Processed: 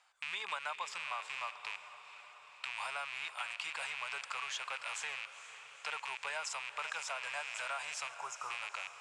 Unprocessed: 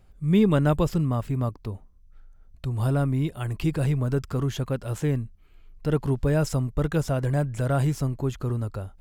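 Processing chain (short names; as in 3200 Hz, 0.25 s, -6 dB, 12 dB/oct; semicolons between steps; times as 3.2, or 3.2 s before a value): rattling part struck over -34 dBFS, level -28 dBFS; elliptic band-pass 910–8200 Hz, stop band 50 dB; spectral delete 8.09–8.51, 1500–5000 Hz; compressor, threshold -40 dBFS, peak gain reduction 12.5 dB; diffused feedback echo 0.474 s, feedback 66%, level -13 dB; gain +3.5 dB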